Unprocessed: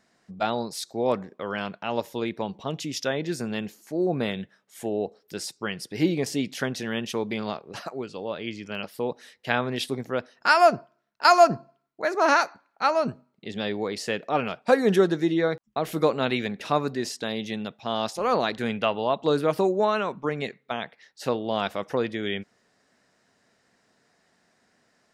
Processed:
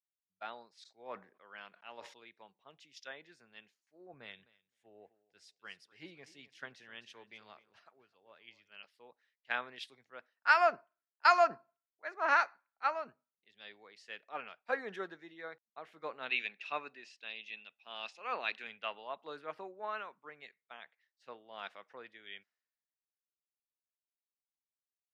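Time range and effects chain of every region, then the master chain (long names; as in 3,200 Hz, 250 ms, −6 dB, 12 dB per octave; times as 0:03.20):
0:00.73–0:02.14: low-pass filter 8,500 Hz + level that may fall only so fast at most 94 dB per second
0:04.13–0:08.69: parametric band 67 Hz +12 dB 1.1 octaves + repeating echo 259 ms, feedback 27%, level −14.5 dB
0:16.29–0:18.67: band-pass filter 150–7,700 Hz + parametric band 2,600 Hz +14 dB 0.23 octaves
whole clip: Chebyshev low-pass filter 1,800 Hz, order 2; first difference; multiband upward and downward expander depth 100%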